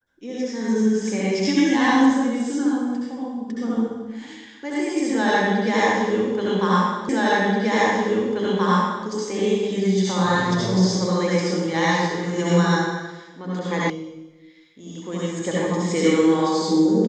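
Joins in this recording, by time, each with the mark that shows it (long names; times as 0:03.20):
0:07.09: the same again, the last 1.98 s
0:13.90: cut off before it has died away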